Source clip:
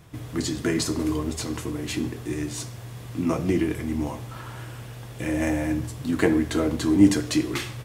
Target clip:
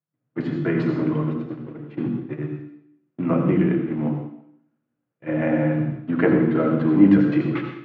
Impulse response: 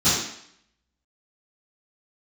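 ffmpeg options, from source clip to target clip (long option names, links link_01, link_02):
-filter_complex "[0:a]agate=range=-44dB:threshold=-27dB:ratio=16:detection=peak,highpass=frequency=140:width=0.5412,highpass=frequency=140:width=1.3066,equalizer=frequency=150:width_type=q:width=4:gain=9,equalizer=frequency=550:width_type=q:width=4:gain=7,equalizer=frequency=1400:width_type=q:width=4:gain=5,lowpass=frequency=2500:width=0.5412,lowpass=frequency=2500:width=1.3066,asplit=2[link_01][link_02];[1:a]atrim=start_sample=2205,adelay=64[link_03];[link_02][link_03]afir=irnorm=-1:irlink=0,volume=-21.5dB[link_04];[link_01][link_04]amix=inputs=2:normalize=0"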